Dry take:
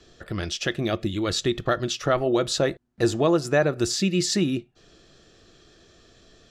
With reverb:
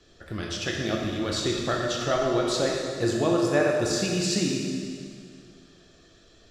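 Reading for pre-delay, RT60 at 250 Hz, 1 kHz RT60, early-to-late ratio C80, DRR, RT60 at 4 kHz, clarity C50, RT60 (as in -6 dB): 7 ms, 2.2 s, 2.2 s, 2.0 dB, -1.5 dB, 2.0 s, 0.5 dB, 2.2 s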